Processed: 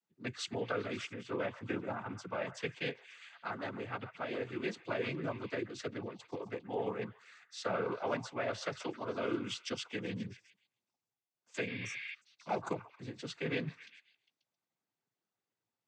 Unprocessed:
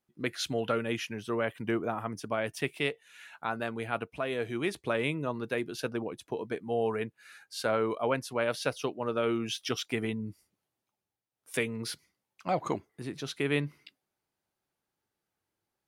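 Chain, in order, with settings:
echo through a band-pass that steps 134 ms, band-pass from 1,100 Hz, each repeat 0.7 octaves, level −10.5 dB
cochlear-implant simulation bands 16
healed spectral selection 0:11.70–0:12.11, 1,400–5,400 Hz before
level −6 dB

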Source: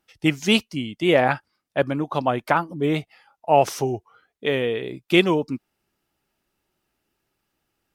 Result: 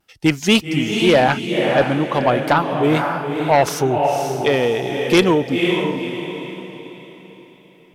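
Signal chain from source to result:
feedback delay with all-pass diffusion 514 ms, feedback 40%, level −5.5 dB
pitch vibrato 0.31 Hz 11 cents
harmonic generator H 5 −9 dB, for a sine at −1 dBFS
level −3 dB

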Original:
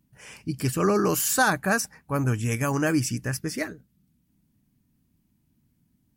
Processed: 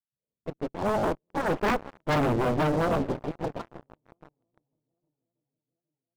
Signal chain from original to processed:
pitch glide at a constant tempo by +3.5 semitones starting unshifted
source passing by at 0:02.12, 6 m/s, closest 2.3 metres
Butterworth low-pass 830 Hz 36 dB per octave
feedback echo with a long and a short gap by turns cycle 815 ms, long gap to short 1.5 to 1, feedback 48%, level −15.5 dB
on a send at −14.5 dB: convolution reverb RT60 0.60 s, pre-delay 3 ms
on the sum: dynamic equaliser 150 Hz, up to +4 dB, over −42 dBFS, Q 2.4
rotating-speaker cabinet horn 1 Hz, later 6.3 Hz, at 0:01.74
harmonic generator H 3 −7 dB, 8 −13 dB, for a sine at −18 dBFS
low-shelf EQ 80 Hz −6.5 dB
leveller curve on the samples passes 5
level −4 dB

